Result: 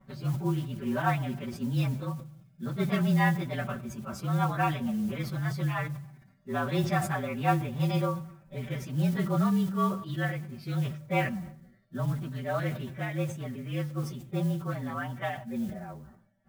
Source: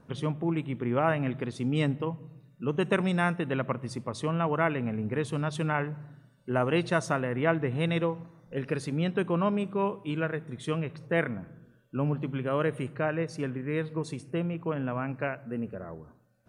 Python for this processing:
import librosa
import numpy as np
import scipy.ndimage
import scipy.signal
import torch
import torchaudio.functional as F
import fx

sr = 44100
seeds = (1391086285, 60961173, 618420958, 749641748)

y = fx.partial_stretch(x, sr, pct=111)
y = fx.lowpass(y, sr, hz=2100.0, slope=6)
y = fx.peak_eq(y, sr, hz=430.0, db=-10.5, octaves=0.68)
y = y + 0.98 * np.pad(y, (int(5.2 * sr / 1000.0), 0))[:len(y)]
y = fx.mod_noise(y, sr, seeds[0], snr_db=26)
y = fx.sustainer(y, sr, db_per_s=90.0)